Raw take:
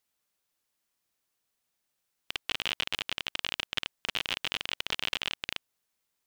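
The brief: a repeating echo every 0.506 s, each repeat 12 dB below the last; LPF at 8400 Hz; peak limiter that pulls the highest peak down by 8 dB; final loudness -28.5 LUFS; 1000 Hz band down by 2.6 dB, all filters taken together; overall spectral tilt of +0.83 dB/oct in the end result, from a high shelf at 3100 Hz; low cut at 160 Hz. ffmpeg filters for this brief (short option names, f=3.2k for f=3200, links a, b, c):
-af "highpass=160,lowpass=8.4k,equalizer=f=1k:t=o:g=-4.5,highshelf=f=3.1k:g=7.5,alimiter=limit=-13.5dB:level=0:latency=1,aecho=1:1:506|1012|1518:0.251|0.0628|0.0157,volume=3.5dB"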